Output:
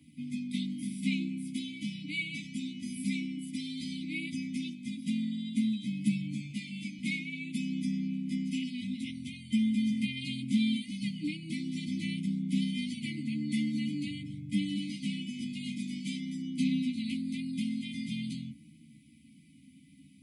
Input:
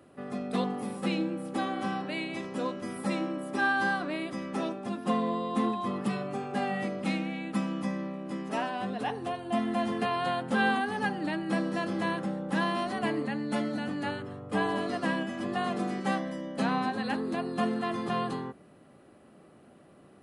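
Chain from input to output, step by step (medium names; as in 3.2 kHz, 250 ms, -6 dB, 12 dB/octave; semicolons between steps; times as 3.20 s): in parallel at -2.5 dB: compression, threshold -35 dBFS, peak gain reduction 12.5 dB; on the sum: brick-wall FIR band-stop 300–2000 Hz; comb of notches 1.4 kHz; 6.50–6.99 s: dynamic bell 150 Hz, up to -8 dB, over -49 dBFS, Q 1.6; chorus voices 2, 0.24 Hz, delay 13 ms, depth 1.5 ms; trim +3 dB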